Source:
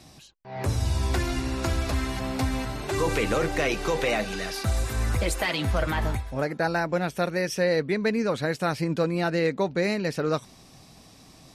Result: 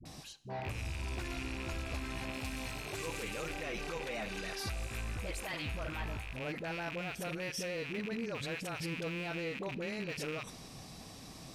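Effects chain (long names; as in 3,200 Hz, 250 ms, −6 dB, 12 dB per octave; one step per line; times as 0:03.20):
loose part that buzzes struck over −35 dBFS, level −17 dBFS
0:02.28–0:03.49: high-shelf EQ 3,600 Hz +9 dB
brickwall limiter −32 dBFS, peak gain reduction 21 dB
all-pass dispersion highs, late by 54 ms, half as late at 480 Hz
convolution reverb, pre-delay 3 ms, DRR 15.5 dB
level +1 dB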